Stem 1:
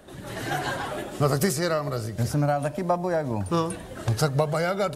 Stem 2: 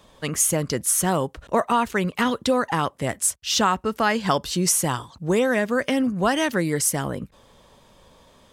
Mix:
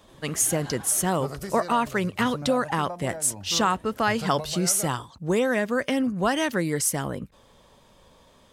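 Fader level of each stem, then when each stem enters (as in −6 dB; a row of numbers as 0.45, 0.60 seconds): −12.5, −2.5 decibels; 0.00, 0.00 seconds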